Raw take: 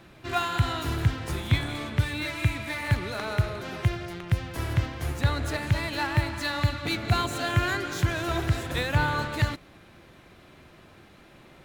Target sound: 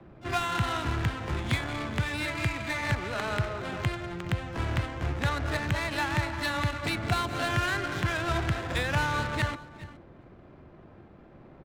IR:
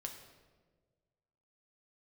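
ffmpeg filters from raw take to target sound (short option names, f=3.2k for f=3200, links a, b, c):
-filter_complex "[0:a]adynamicsmooth=sensitivity=6.5:basefreq=860,asplit=2[a][b];[b]adelay=396.5,volume=-23dB,highshelf=f=4k:g=-8.92[c];[a][c]amix=inputs=2:normalize=0,acrossover=split=96|240|620|1900[d][e][f][g][h];[d]acompressor=threshold=-34dB:ratio=4[i];[e]acompressor=threshold=-37dB:ratio=4[j];[f]acompressor=threshold=-43dB:ratio=4[k];[g]acompressor=threshold=-32dB:ratio=4[l];[h]acompressor=threshold=-36dB:ratio=4[m];[i][j][k][l][m]amix=inputs=5:normalize=0,asplit=2[n][o];[o]aecho=0:1:418:0.1[p];[n][p]amix=inputs=2:normalize=0,asplit=2[q][r];[r]asetrate=88200,aresample=44100,atempo=0.5,volume=-16dB[s];[q][s]amix=inputs=2:normalize=0,volume=2.5dB"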